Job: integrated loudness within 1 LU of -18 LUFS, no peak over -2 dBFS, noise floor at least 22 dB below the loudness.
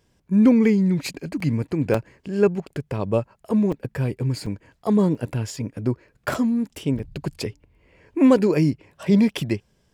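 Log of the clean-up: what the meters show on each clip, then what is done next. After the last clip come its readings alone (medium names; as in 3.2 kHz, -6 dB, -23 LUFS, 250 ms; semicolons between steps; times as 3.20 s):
dropouts 7; longest dropout 4.5 ms; loudness -22.5 LUFS; peak level -3.5 dBFS; loudness target -18.0 LUFS
-> interpolate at 1.40/1.94/3.72/4.46/5.15/6.34/6.99 s, 4.5 ms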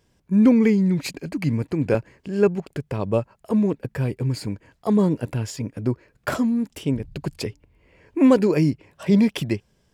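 dropouts 0; loudness -22.5 LUFS; peak level -3.5 dBFS; loudness target -18.0 LUFS
-> trim +4.5 dB; peak limiter -2 dBFS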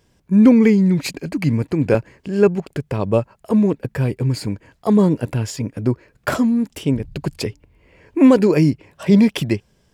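loudness -18.0 LUFS; peak level -2.0 dBFS; noise floor -61 dBFS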